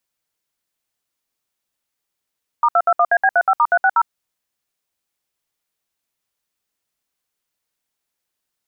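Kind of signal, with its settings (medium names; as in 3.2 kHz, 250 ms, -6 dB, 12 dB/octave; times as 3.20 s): DTMF "*221AB35*360", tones 56 ms, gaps 65 ms, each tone -13.5 dBFS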